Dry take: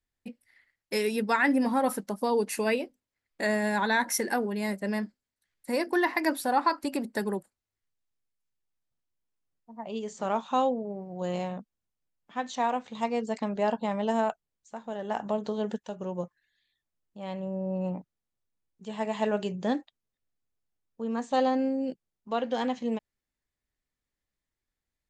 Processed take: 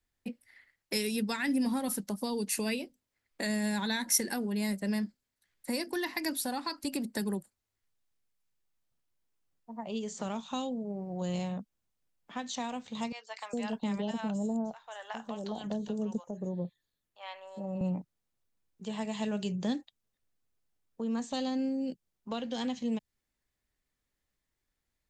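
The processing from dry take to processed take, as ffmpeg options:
ffmpeg -i in.wav -filter_complex "[0:a]asettb=1/sr,asplit=3[link_01][link_02][link_03];[link_01]atrim=end=13.124[link_04];[link_02]atrim=start=13.12:end=17.81,asetpts=PTS-STARTPTS,afade=type=in:duration=0.004:curve=qsin,afade=type=out:start_time=4.686:duration=0.004:curve=qsin,acrossover=split=810|5700[link_05][link_06][link_07];[link_07]adelay=260[link_08];[link_05]adelay=410[link_09];[link_09][link_06][link_08]amix=inputs=3:normalize=0,atrim=end_sample=206829[link_10];[link_03]atrim=start=17.806[link_11];[link_04][link_10]acrossfade=duration=0.004:curve1=hsin:curve2=qsin[link_12];[link_12][link_11]acrossfade=duration=0.004:curve1=qsin:curve2=hsin,acrossover=split=220|3000[link_13][link_14][link_15];[link_14]acompressor=threshold=-42dB:ratio=5[link_16];[link_13][link_16][link_15]amix=inputs=3:normalize=0,volume=3.5dB" out.wav

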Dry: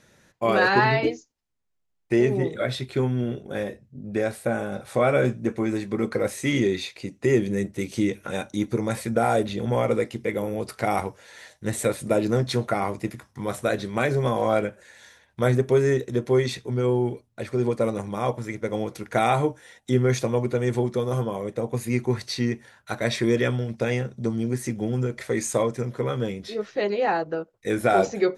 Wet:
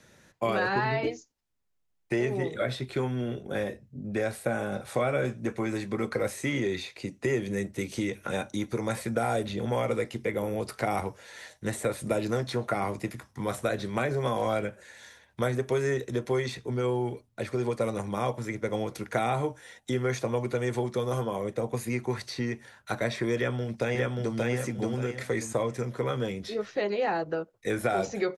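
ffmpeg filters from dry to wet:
ffmpeg -i in.wav -filter_complex "[0:a]asplit=2[link_01][link_02];[link_02]afade=type=in:start_time=23.36:duration=0.01,afade=type=out:start_time=24.36:duration=0.01,aecho=0:1:580|1160|1740|2320:0.891251|0.222813|0.0557032|0.0139258[link_03];[link_01][link_03]amix=inputs=2:normalize=0,acrossover=split=150|520|1800[link_04][link_05][link_06][link_07];[link_04]acompressor=threshold=-37dB:ratio=4[link_08];[link_05]acompressor=threshold=-33dB:ratio=4[link_09];[link_06]acompressor=threshold=-29dB:ratio=4[link_10];[link_07]acompressor=threshold=-39dB:ratio=4[link_11];[link_08][link_09][link_10][link_11]amix=inputs=4:normalize=0" out.wav

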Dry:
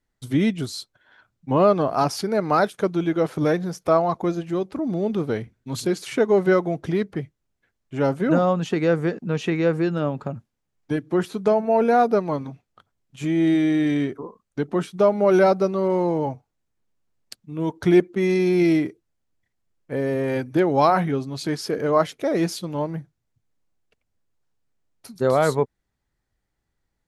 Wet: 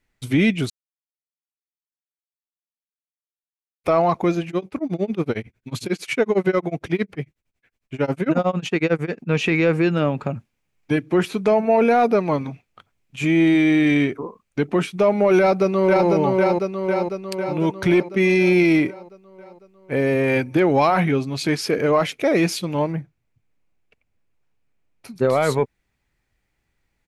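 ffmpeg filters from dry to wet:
ffmpeg -i in.wav -filter_complex "[0:a]asettb=1/sr,asplit=3[link_01][link_02][link_03];[link_01]atrim=end=4.484[link_04];[link_02]atrim=start=4.48:end=9.31,asetpts=PTS-STARTPTS,afade=type=in:duration=0.004:curve=qsin,afade=type=out:start_time=4.826:duration=0.004:curve=qsin,tremolo=f=11:d=0.97[link_05];[link_03]atrim=start=9.306[link_06];[link_04][link_05]acrossfade=duration=0.004:curve1=hsin:curve2=qsin[link_07];[link_07][link_06]acrossfade=duration=0.004:curve1=qsin:curve2=hsin,asplit=2[link_08][link_09];[link_09]afade=type=in:start_time=15.38:duration=0.01,afade=type=out:start_time=16.08:duration=0.01,aecho=0:1:500|1000|1500|2000|2500|3000|3500|4000|4500:0.707946|0.424767|0.25486|0.152916|0.0917498|0.0550499|0.0330299|0.019818|0.0118908[link_10];[link_08][link_10]amix=inputs=2:normalize=0,asettb=1/sr,asplit=3[link_11][link_12][link_13];[link_11]atrim=end=22.924[link_14];[link_12]atrim=start=22.92:end=25.29,asetpts=PTS-STARTPTS,afade=type=in:duration=0.004:curve=qsin,afade=type=out:start_time=2.366:duration=0.004:curve=qsin,highshelf=frequency=2500:gain=-7.5[link_15];[link_13]atrim=start=25.286[link_16];[link_14][link_15]acrossfade=duration=0.004:curve1=hsin:curve2=qsin[link_17];[link_17][link_16]acrossfade=duration=0.004:curve1=qsin:curve2=hsin,asplit=3[link_18][link_19][link_20];[link_18]atrim=end=0.7,asetpts=PTS-STARTPTS,afade=type=out:start_time=0.696:duration=0.004:curve=hsin[link_21];[link_19]atrim=start=0.7:end=3.84,asetpts=PTS-STARTPTS,volume=0[link_22];[link_20]atrim=start=3.84,asetpts=PTS-STARTPTS,afade=type=in:duration=0.004:curve=hsin[link_23];[link_21][link_22][link_23]concat=n=3:v=0:a=1,equalizer=frequency=2400:width_type=o:width=0.53:gain=10.5,acontrast=30,alimiter=limit=-8dB:level=0:latency=1:release=22,volume=-1dB" out.wav

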